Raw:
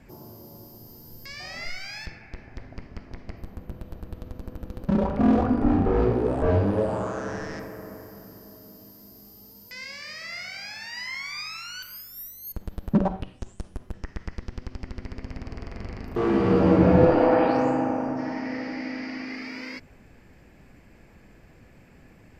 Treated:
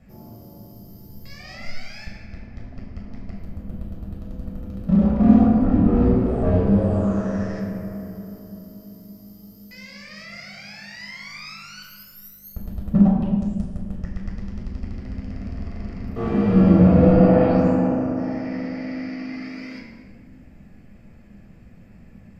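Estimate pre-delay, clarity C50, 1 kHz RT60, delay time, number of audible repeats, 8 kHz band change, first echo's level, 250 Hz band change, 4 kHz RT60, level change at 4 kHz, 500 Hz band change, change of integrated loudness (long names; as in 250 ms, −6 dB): 13 ms, 3.5 dB, 1.4 s, no echo audible, no echo audible, can't be measured, no echo audible, +6.5 dB, 1.0 s, −3.5 dB, +1.0 dB, +5.5 dB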